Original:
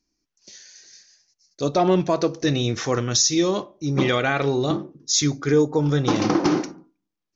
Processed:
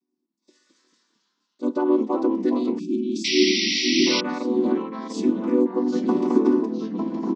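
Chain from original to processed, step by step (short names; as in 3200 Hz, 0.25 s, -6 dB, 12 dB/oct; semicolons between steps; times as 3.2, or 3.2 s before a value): chord vocoder minor triad, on B3; low shelf 380 Hz +11 dB; on a send: echo 1.176 s -15 dB; on the sum: echoes that change speed 0.156 s, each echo -2 st, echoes 3, each echo -6 dB; spectral delete 2.79–4.07, 390–2300 Hz; bell 1000 Hz +12 dB 0.25 oct; painted sound noise, 3.24–4.21, 1900–5900 Hz -17 dBFS; gain -7 dB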